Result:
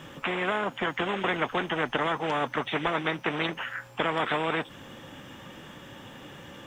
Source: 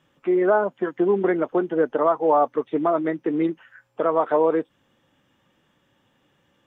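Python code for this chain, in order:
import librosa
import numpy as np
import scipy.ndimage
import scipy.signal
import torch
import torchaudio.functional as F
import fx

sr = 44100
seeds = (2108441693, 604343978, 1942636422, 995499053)

y = fx.spectral_comp(x, sr, ratio=4.0)
y = F.gain(torch.from_numpy(y), -2.5).numpy()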